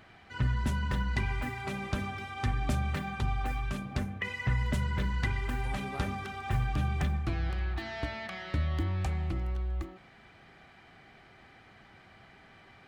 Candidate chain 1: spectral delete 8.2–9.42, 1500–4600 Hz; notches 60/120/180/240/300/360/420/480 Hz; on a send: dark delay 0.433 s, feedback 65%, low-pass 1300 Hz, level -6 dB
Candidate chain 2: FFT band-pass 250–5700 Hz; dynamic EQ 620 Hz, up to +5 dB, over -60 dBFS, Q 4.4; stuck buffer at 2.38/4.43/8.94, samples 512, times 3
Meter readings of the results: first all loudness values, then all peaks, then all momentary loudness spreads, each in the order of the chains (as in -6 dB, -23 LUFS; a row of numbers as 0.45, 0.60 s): -33.5, -38.5 LUFS; -18.0, -20.5 dBFS; 16, 19 LU